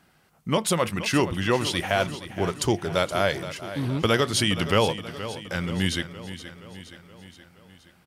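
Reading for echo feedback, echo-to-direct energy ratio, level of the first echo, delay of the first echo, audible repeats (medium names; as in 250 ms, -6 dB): 57%, -11.5 dB, -13.0 dB, 472 ms, 5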